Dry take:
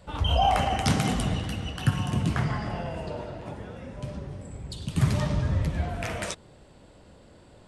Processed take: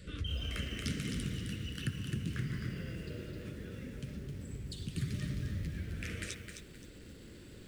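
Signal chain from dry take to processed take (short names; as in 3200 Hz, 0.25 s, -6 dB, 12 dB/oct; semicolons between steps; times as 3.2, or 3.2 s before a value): Chebyshev band-stop 400–1700 Hz, order 2; compressor 2:1, threshold -50 dBFS, peak gain reduction 17.5 dB; lo-fi delay 0.262 s, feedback 35%, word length 10-bit, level -6 dB; gain +3 dB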